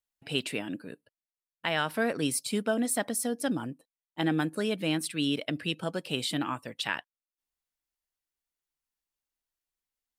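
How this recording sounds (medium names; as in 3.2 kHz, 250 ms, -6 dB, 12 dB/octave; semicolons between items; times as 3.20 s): noise floor -96 dBFS; spectral tilt -3.5 dB/octave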